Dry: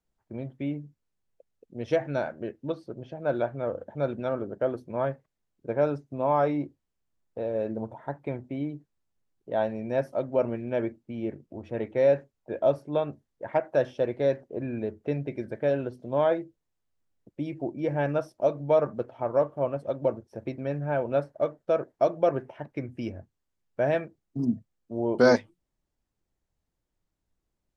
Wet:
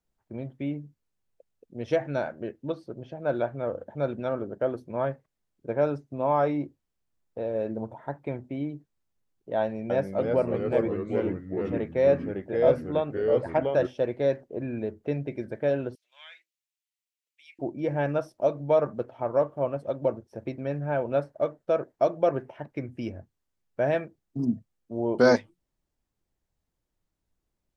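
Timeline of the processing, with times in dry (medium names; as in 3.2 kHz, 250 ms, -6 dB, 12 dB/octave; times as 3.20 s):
9.61–13.87 s: ever faster or slower copies 288 ms, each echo -2 st, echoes 3
15.95–17.59 s: Chebyshev high-pass 2.3 kHz, order 3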